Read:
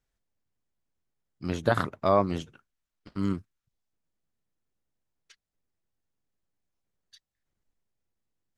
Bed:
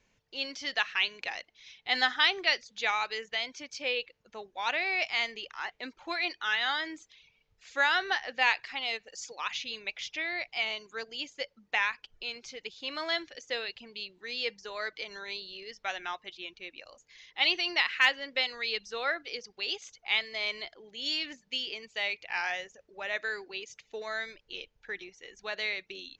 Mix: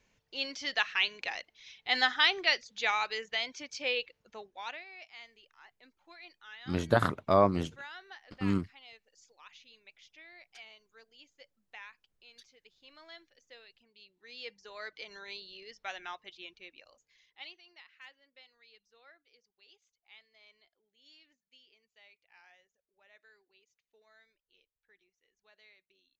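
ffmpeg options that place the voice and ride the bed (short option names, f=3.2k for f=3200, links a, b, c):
-filter_complex "[0:a]adelay=5250,volume=-1dB[a];[1:a]volume=14dB,afade=t=out:st=4.2:d=0.65:silence=0.105925,afade=t=in:st=13.93:d=1.18:silence=0.188365,afade=t=out:st=16.46:d=1.11:silence=0.0707946[b];[a][b]amix=inputs=2:normalize=0"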